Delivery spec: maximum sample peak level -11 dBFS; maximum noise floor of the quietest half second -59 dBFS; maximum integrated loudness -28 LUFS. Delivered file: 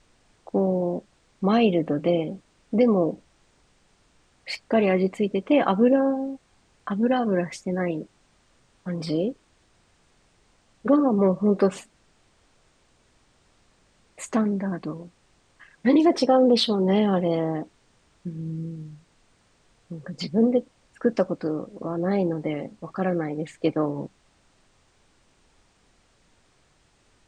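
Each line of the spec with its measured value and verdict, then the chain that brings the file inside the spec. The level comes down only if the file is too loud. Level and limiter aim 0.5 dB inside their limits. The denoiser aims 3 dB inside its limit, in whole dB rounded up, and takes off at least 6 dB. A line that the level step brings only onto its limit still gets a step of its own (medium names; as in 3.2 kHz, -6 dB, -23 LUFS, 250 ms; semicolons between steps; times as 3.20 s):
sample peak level -8.0 dBFS: fail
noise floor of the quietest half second -63 dBFS: pass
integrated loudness -24.0 LUFS: fail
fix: trim -4.5 dB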